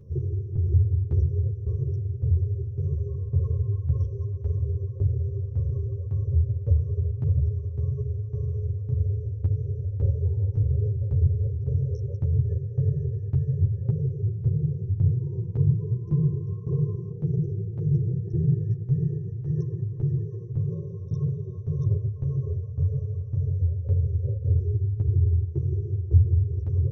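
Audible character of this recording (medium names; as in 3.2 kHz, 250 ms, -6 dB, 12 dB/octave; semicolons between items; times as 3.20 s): tremolo saw down 1.8 Hz, depth 75%; a shimmering, thickened sound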